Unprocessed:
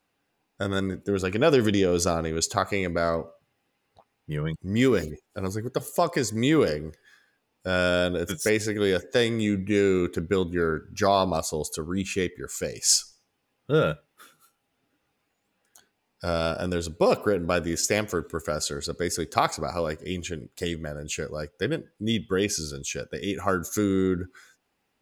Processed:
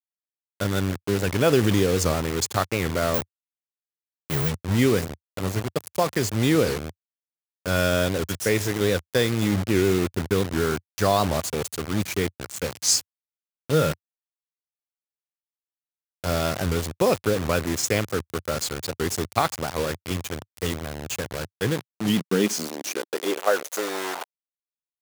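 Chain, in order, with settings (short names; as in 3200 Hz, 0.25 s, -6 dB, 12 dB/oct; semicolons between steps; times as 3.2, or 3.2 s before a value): bit-crush 5-bit; 3.14–4.49 careless resampling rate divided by 2×, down none, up zero stuff; high-pass sweep 90 Hz -> 760 Hz, 21.4–24.1; record warp 78 rpm, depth 160 cents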